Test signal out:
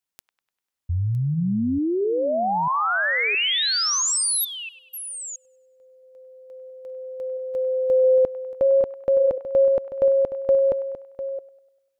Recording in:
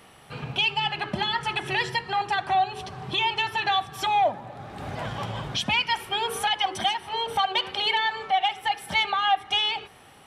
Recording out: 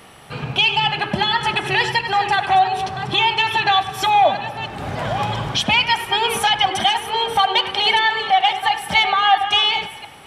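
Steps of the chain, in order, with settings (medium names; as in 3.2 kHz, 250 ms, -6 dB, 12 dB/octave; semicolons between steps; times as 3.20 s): chunks repeated in reverse 670 ms, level -11 dB; feedback echo behind a band-pass 99 ms, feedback 51%, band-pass 1.5 kHz, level -12 dB; trim +7.5 dB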